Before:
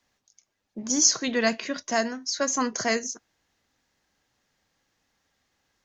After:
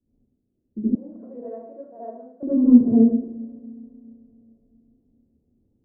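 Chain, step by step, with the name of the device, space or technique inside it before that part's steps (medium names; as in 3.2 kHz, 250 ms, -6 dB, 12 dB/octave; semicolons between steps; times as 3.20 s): next room (low-pass 330 Hz 24 dB/octave; reverberation RT60 0.60 s, pre-delay 68 ms, DRR -10.5 dB); 0.95–2.43 s: Chebyshev band-pass 570–3800 Hz, order 3; Schroeder reverb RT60 3.5 s, combs from 27 ms, DRR 18.5 dB; trim +5.5 dB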